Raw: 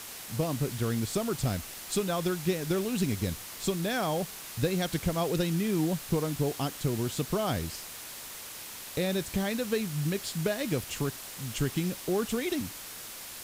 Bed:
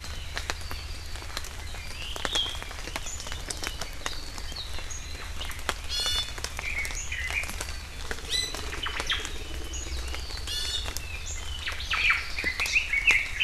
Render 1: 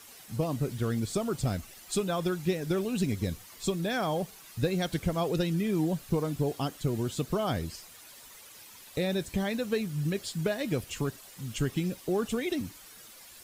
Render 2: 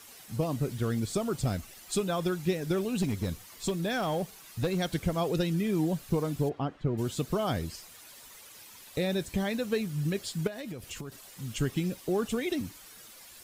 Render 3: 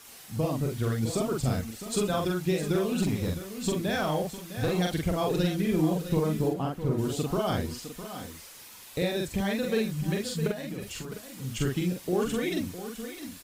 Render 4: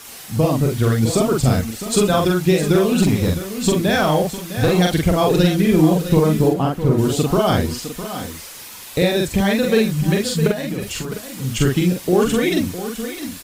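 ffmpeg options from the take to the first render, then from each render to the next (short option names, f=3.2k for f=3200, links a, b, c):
-af "afftdn=nr=11:nf=-43"
-filter_complex "[0:a]asettb=1/sr,asplit=3[a][b][c];[a]atrim=end=3.024[d];[b]atrim=start=3.02:end=4.79,asetpts=PTS-STARTPTS,afade=t=in:d=0.004:c=qsin,afade=t=out:st=1.766:d=0.004:c=qsin,asoftclip=type=hard:threshold=-23.5dB[e];[c]atrim=start=4.786[f];[d][e]acrossfade=d=0.004:c1=hsin:c2=qsin[g];[g][f]acrossfade=d=0.004:c1=qsin:c2=hsin,asplit=3[h][i][j];[h]afade=t=out:st=6.48:d=0.02[k];[i]lowpass=1.9k,afade=t=in:st=6.48:d=0.02,afade=t=out:st=6.97:d=0.02[l];[j]afade=t=in:st=6.97:d=0.02[m];[k][l][m]amix=inputs=3:normalize=0,asettb=1/sr,asplit=3[n][o][p];[n]atrim=end=10.474[q];[o]atrim=start=10.47:end=11.12,asetpts=PTS-STARTPTS,afade=t=in:d=0.004:c=qsin,afade=t=out:st=0.646:d=0.004:c=qsin,acompressor=threshold=-35dB:ratio=12:attack=3.2:release=140:knee=1:detection=peak[r];[p]atrim=start=11.116[s];[q][r]acrossfade=d=0.004:c1=hsin:c2=qsin[t];[t][s]acrossfade=d=0.004:c1=qsin:c2=hsin"
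-filter_complex "[0:a]asplit=2[a][b];[b]adelay=45,volume=-2dB[c];[a][c]amix=inputs=2:normalize=0,asplit=2[d][e];[e]aecho=0:1:658|662:0.266|0.133[f];[d][f]amix=inputs=2:normalize=0"
-af "volume=11.5dB"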